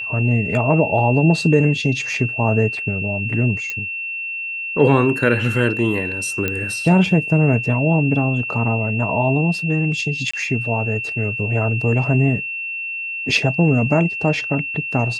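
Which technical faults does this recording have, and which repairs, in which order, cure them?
whistle 2,700 Hz −24 dBFS
0:03.70: click −11 dBFS
0:06.48: click −7 dBFS
0:10.31–0:10.34: drop-out 25 ms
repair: click removal
notch filter 2,700 Hz, Q 30
repair the gap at 0:10.31, 25 ms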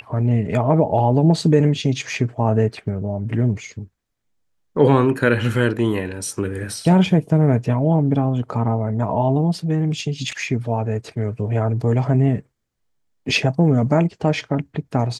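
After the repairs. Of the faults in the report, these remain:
none of them is left

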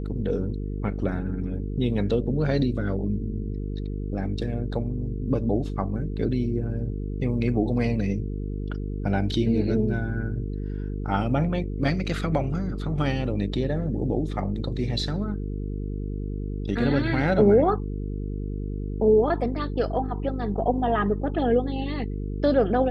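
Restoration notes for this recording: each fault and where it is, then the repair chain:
mains buzz 50 Hz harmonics 9 −30 dBFS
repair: hum removal 50 Hz, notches 9

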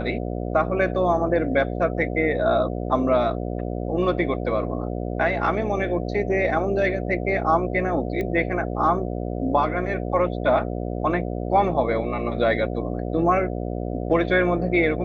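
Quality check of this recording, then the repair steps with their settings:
mains buzz 60 Hz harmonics 12 −28 dBFS
0:08.21: click −17 dBFS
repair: click removal
hum removal 60 Hz, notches 12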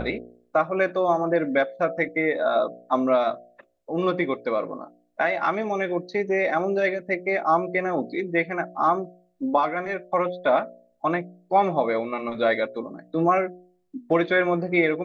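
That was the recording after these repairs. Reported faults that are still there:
none of them is left

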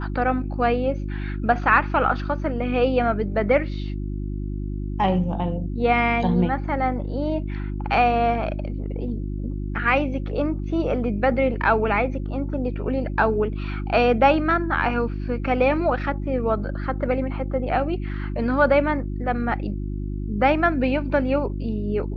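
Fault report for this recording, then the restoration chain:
mains hum 50 Hz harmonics 7 −28 dBFS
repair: hum removal 50 Hz, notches 7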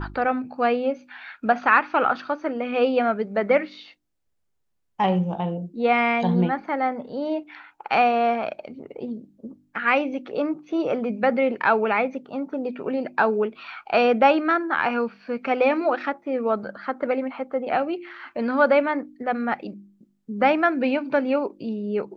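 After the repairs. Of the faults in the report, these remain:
none of them is left

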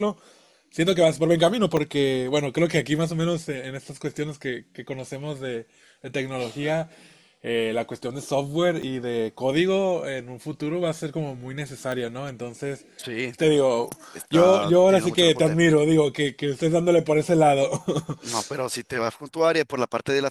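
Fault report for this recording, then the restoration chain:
0:01.77: drop-out 2.4 ms
0:08.82–0:08.83: drop-out 6.6 ms
0:11.92: click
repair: click removal
repair the gap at 0:01.77, 2.4 ms
repair the gap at 0:08.82, 6.6 ms

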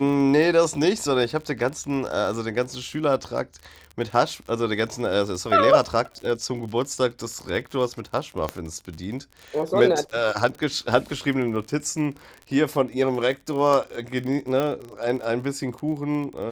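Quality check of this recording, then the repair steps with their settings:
surface crackle 41 per second −31 dBFS
0:08.49: click −12 dBFS
0:14.60: click −13 dBFS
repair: click removal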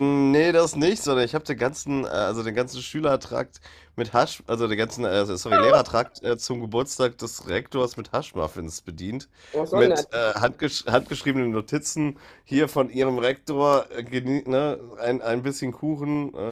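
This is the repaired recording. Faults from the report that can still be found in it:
none of them is left

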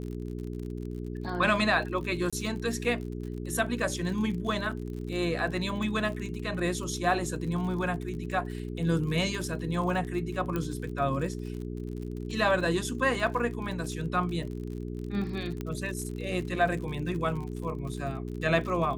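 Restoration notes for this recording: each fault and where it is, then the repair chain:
surface crackle 58 per second −37 dBFS
mains hum 60 Hz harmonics 7 −36 dBFS
0:02.30–0:02.33: drop-out 26 ms
0:10.56: click −18 dBFS
0:15.61: click −21 dBFS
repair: click removal
hum removal 60 Hz, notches 7
repair the gap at 0:02.30, 26 ms

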